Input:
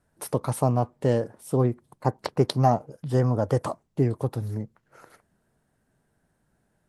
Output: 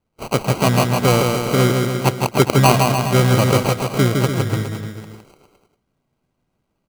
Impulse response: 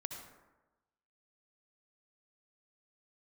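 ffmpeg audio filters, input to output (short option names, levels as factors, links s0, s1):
-filter_complex "[0:a]asplit=2[s0][s1];[s1]asetrate=66075,aresample=44100,atempo=0.66742,volume=0.355[s2];[s0][s2]amix=inputs=2:normalize=0,acrusher=samples=25:mix=1:aa=0.000001,agate=range=0.316:threshold=0.00178:ratio=16:detection=peak,asplit=2[s3][s4];[s4]aecho=0:1:160|296|411.6|509.9|593.4:0.631|0.398|0.251|0.158|0.1[s5];[s3][s5]amix=inputs=2:normalize=0,volume=2"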